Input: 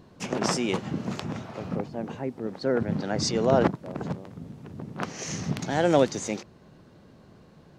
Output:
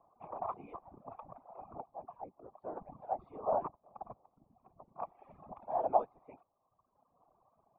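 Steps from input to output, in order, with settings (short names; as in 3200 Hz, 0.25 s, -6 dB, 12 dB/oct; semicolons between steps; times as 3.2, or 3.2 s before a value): vocal tract filter a; whisperiser; reverb removal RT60 1.3 s; gain +1.5 dB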